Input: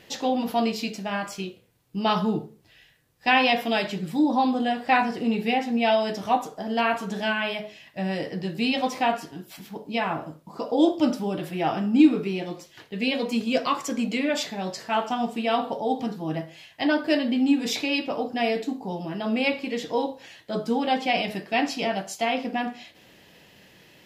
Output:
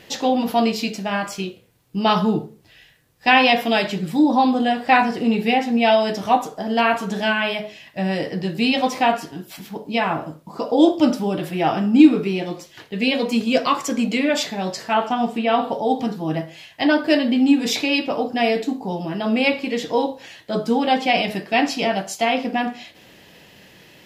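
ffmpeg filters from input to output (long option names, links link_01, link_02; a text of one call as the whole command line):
ffmpeg -i in.wav -filter_complex "[0:a]asettb=1/sr,asplit=3[link_01][link_02][link_03];[link_01]atrim=end=14.934[link_04];[link_02]atrim=start=14.93:end=15.74,asetpts=PTS-STARTPTS,afade=type=in:duration=0.004:curve=qsin,afade=type=out:start_time=0.806:duration=0.004:curve=qsin,acrossover=split=3500[link_05][link_06];[link_06]acompressor=threshold=-52dB:ratio=4:attack=1:release=60[link_07];[link_05][link_07]amix=inputs=2:normalize=0[link_08];[link_03]atrim=start=15.736[link_09];[link_04][link_08]acrossfade=duration=0.004:curve1=hsin:curve2=qsin[link_10];[link_10][link_09]acrossfade=duration=0.004:curve1=qsin:curve2=hsin,volume=5.5dB" out.wav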